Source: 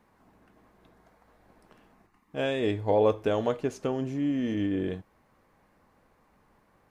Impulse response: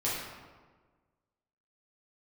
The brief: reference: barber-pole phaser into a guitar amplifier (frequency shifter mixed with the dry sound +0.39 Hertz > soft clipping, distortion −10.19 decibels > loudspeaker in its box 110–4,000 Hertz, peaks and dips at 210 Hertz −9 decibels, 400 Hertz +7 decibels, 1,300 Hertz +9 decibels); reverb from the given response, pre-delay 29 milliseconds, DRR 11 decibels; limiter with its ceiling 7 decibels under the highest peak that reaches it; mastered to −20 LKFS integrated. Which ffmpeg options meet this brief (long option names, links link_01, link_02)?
-filter_complex "[0:a]alimiter=limit=-18.5dB:level=0:latency=1,asplit=2[link_01][link_02];[1:a]atrim=start_sample=2205,adelay=29[link_03];[link_02][link_03]afir=irnorm=-1:irlink=0,volume=-18.5dB[link_04];[link_01][link_04]amix=inputs=2:normalize=0,asplit=2[link_05][link_06];[link_06]afreqshift=0.39[link_07];[link_05][link_07]amix=inputs=2:normalize=1,asoftclip=threshold=-30dB,highpass=110,equalizer=frequency=210:width_type=q:width=4:gain=-9,equalizer=frequency=400:width_type=q:width=4:gain=7,equalizer=frequency=1300:width_type=q:width=4:gain=9,lowpass=frequency=4000:width=0.5412,lowpass=frequency=4000:width=1.3066,volume=14.5dB"